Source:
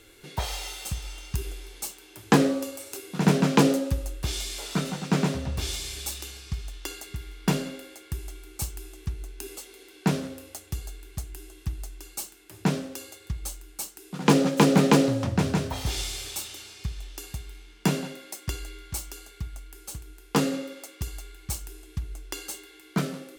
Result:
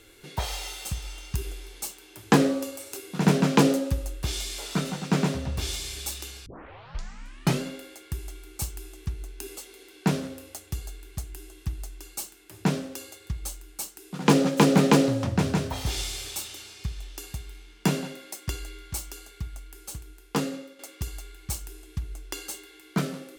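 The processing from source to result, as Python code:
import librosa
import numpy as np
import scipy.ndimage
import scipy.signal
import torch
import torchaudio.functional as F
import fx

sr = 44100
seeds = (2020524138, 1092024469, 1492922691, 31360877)

y = fx.edit(x, sr, fx.tape_start(start_s=6.46, length_s=1.16),
    fx.fade_out_to(start_s=19.98, length_s=0.81, floor_db=-10.5), tone=tone)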